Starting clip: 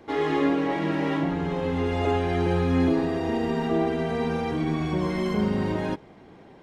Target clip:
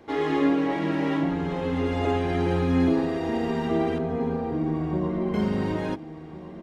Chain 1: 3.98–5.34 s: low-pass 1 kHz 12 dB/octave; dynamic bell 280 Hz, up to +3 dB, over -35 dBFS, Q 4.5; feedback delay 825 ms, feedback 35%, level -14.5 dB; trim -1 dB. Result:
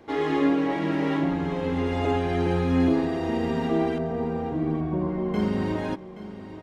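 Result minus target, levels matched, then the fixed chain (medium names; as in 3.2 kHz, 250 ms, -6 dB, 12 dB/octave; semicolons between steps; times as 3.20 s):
echo 579 ms early
3.98–5.34 s: low-pass 1 kHz 12 dB/octave; dynamic bell 280 Hz, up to +3 dB, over -35 dBFS, Q 4.5; feedback delay 1404 ms, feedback 35%, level -14.5 dB; trim -1 dB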